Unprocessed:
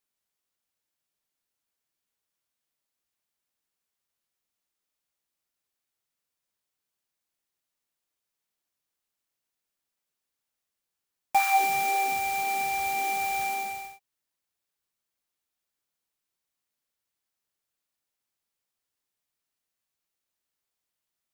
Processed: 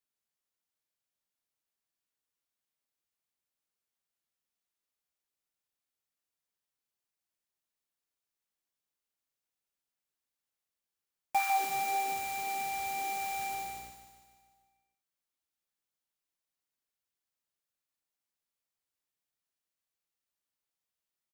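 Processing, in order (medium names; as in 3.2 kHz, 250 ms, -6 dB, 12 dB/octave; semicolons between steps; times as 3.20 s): 13.49–13.90 s: mains buzz 60 Hz, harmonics 10, -53 dBFS -2 dB/octave; feedback delay 149 ms, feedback 56%, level -9 dB; trim -6.5 dB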